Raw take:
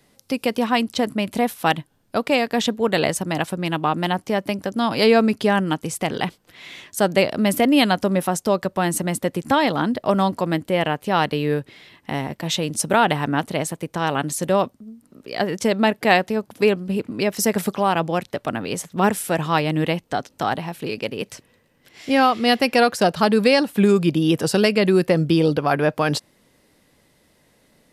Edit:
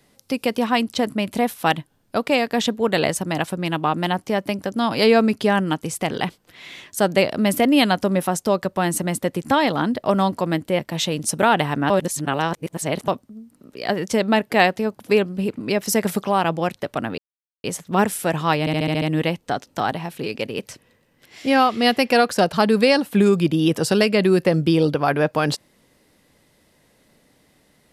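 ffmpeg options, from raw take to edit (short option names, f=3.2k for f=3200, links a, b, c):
-filter_complex "[0:a]asplit=11[a][b][c][d][e][f][g][h][i][j][k];[a]atrim=end=10.792[l];[b]atrim=start=12.298:end=13.412[m];[c]atrim=start=13.408:end=14.592,asetpts=PTS-STARTPTS,areverse[n];[d]atrim=start=14.588:end=18.69,asetpts=PTS-STARTPTS,afade=t=out:st=4.098:d=0.004:c=hsin,apad=pad_dur=0.46[o];[e]atrim=start=18.69:end=19.722,asetpts=PTS-STARTPTS,afade=t=in:d=0.004:c=hsin[p];[f]atrim=start=19.648:end=19.722[q];[g]atrim=start=19.648:end=19.722[r];[h]atrim=start=19.648:end=19.722[s];[i]atrim=start=19.648:end=19.722[t];[j]atrim=start=19.648:end=19.722[u];[k]atrim=start=19.648[v];[l][m]acrossfade=d=0.004:c1=hsin:c2=hsin[w];[w][n]acrossfade=d=0.004:c1=hsin:c2=hsin[x];[o][p]concat=n=2:v=0:a=1[y];[x][y]acrossfade=d=0.004:c1=hsin:c2=hsin[z];[z][q]acrossfade=d=0.004:c1=hsin:c2=hsin[aa];[aa][r]acrossfade=d=0.004:c1=hsin:c2=hsin[ab];[ab][s]acrossfade=d=0.004:c1=hsin:c2=hsin[ac];[ac][t]acrossfade=d=0.004:c1=hsin:c2=hsin[ad];[ad][u]acrossfade=d=0.004:c1=hsin:c2=hsin[ae];[ae][v]acrossfade=d=0.004:c1=hsin:c2=hsin"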